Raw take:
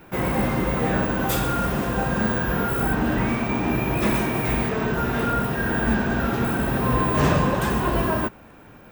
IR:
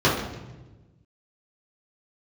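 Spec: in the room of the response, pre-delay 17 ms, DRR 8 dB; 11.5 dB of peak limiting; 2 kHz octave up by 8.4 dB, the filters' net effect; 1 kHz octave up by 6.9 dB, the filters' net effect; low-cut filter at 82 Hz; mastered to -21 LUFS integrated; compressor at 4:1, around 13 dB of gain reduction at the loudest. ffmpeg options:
-filter_complex "[0:a]highpass=82,equalizer=f=1000:t=o:g=6,equalizer=f=2000:t=o:g=9,acompressor=threshold=0.0398:ratio=4,alimiter=level_in=1.58:limit=0.0631:level=0:latency=1,volume=0.631,asplit=2[s0][s1];[1:a]atrim=start_sample=2205,adelay=17[s2];[s1][s2]afir=irnorm=-1:irlink=0,volume=0.0398[s3];[s0][s3]amix=inputs=2:normalize=0,volume=5.01"

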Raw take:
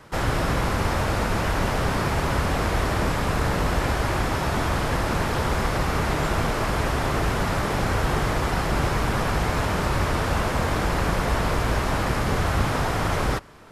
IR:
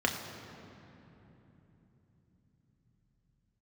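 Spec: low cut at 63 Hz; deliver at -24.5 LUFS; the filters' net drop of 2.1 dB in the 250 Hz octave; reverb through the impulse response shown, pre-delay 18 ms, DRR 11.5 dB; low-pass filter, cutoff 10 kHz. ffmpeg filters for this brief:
-filter_complex "[0:a]highpass=63,lowpass=10000,equalizer=f=250:t=o:g=-3,asplit=2[s0][s1];[1:a]atrim=start_sample=2205,adelay=18[s2];[s1][s2]afir=irnorm=-1:irlink=0,volume=0.0841[s3];[s0][s3]amix=inputs=2:normalize=0,volume=1.06"

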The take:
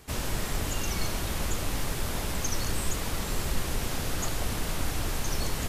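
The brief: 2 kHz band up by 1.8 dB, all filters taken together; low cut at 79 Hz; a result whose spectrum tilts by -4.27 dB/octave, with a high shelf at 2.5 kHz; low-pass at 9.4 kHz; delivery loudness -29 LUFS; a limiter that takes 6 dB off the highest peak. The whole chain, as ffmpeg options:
-af "highpass=79,lowpass=9400,equalizer=f=2000:t=o:g=6,highshelf=f=2500:g=-8,volume=2.37,alimiter=limit=0.106:level=0:latency=1"

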